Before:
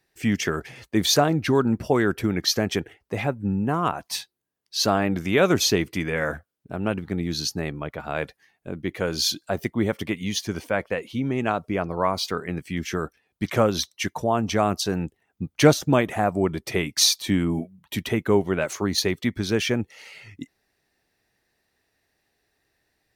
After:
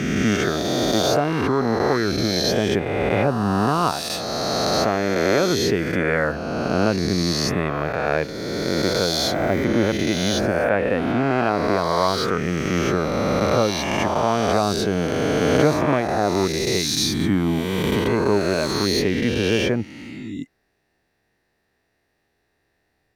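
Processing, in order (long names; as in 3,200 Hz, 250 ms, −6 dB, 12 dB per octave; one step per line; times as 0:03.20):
peak hold with a rise ahead of every peak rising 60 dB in 2.47 s
high-shelf EQ 2,700 Hz −9 dB
speech leveller within 4 dB 0.5 s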